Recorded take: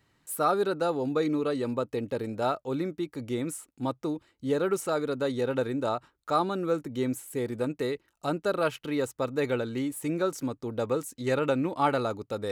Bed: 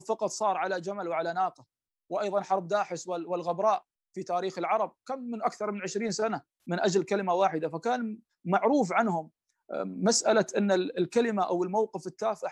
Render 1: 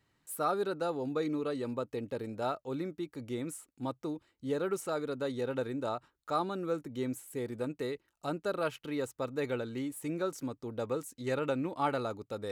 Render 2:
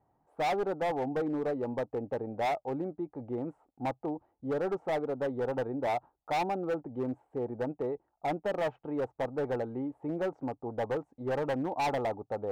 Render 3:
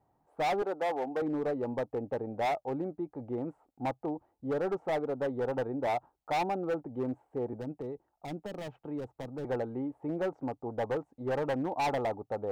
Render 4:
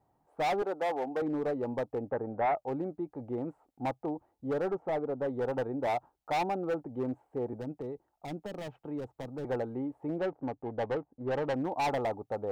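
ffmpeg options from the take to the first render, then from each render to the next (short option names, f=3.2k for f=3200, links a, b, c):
-af "volume=-6dB"
-af "lowpass=f=780:t=q:w=6.3,asoftclip=type=hard:threshold=-27dB"
-filter_complex "[0:a]asettb=1/sr,asplit=3[a][b][c];[a]atrim=end=0.624[d];[b]atrim=start=0.62:end=1.22,asetpts=PTS-STARTPTS,afade=t=in:d=0.004:c=qsin,afade=t=out:st=0.596:d=0.004:c=qsin,highpass=320[e];[c]atrim=start=1.216[f];[d][e]acrossfade=d=0.004:c1=hsin:c2=qsin[g];[g][f]acrossfade=d=0.004:c1=qsin:c2=hsin,asettb=1/sr,asplit=3[h][i][j];[h]atrim=end=7.534[k];[i]atrim=start=7.53:end=9.45,asetpts=PTS-STARTPTS,afade=t=in:d=0.004:c=qsin,afade=t=out:st=1.916:d=0.004:c=qsin,acrossover=split=310|3000[l][m][n];[m]acompressor=threshold=-42dB:ratio=6:attack=3.2:release=140:knee=2.83:detection=peak[o];[l][o][n]amix=inputs=3:normalize=0[p];[j]atrim=start=9.446[q];[k][p]acrossfade=d=0.004:c1=hsin:c2=qsin[r];[r][q]acrossfade=d=0.004:c1=qsin:c2=hsin"
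-filter_complex "[0:a]asettb=1/sr,asplit=3[a][b][c];[a]atrim=end=2.094[d];[b]atrim=start=2.09:end=2.56,asetpts=PTS-STARTPTS,afade=t=in:d=0.004:c=qsin,afade=t=out:st=0.466:d=0.004:c=qsin,lowpass=f=1.5k:t=q:w=1.8[e];[c]atrim=start=2.556[f];[d][e]acrossfade=d=0.004:c1=hsin:c2=qsin[g];[g][f]acrossfade=d=0.004:c1=qsin:c2=hsin,asplit=3[h][i][j];[h]afade=t=out:st=4.7:d=0.02[k];[i]highshelf=f=2.4k:g=-11,afade=t=in:st=4.7:d=0.02,afade=t=out:st=5.26:d=0.02[l];[j]afade=t=in:st=5.26:d=0.02[m];[k][l][m]amix=inputs=3:normalize=0,asettb=1/sr,asplit=3[n][o][p];[n]atrim=end=10.184[q];[o]atrim=start=10.18:end=11.54,asetpts=PTS-STARTPTS,afade=t=in:d=0.004:c=qsin,afade=t=out:st=1.356:d=0.004:c=qsin,adynamicsmooth=sensitivity=5.5:basefreq=1.1k[r];[p]atrim=start=11.536[s];[q][r]acrossfade=d=0.004:c1=hsin:c2=qsin[t];[t][s]acrossfade=d=0.004:c1=qsin:c2=hsin"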